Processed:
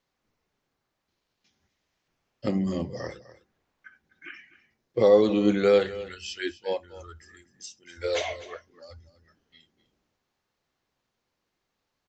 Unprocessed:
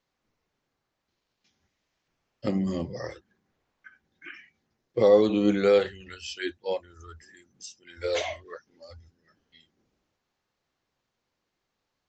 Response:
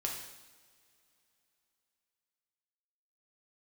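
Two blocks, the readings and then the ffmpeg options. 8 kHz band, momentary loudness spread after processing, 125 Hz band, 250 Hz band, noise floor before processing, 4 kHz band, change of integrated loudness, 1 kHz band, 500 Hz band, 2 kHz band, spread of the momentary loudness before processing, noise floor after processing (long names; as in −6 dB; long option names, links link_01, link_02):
can't be measured, 25 LU, +0.5 dB, +0.5 dB, −82 dBFS, +0.5 dB, +0.5 dB, +0.5 dB, +0.5 dB, +0.5 dB, 25 LU, −81 dBFS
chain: -filter_complex "[0:a]aecho=1:1:252:0.15,asplit=2[link_01][link_02];[1:a]atrim=start_sample=2205,atrim=end_sample=3969[link_03];[link_02][link_03]afir=irnorm=-1:irlink=0,volume=-23.5dB[link_04];[link_01][link_04]amix=inputs=2:normalize=0"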